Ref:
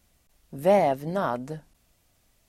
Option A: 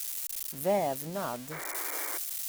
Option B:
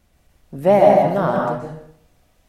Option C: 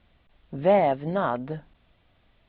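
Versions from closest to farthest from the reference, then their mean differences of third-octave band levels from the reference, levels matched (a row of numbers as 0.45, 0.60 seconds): C, B, A; 3.5, 6.0, 8.5 decibels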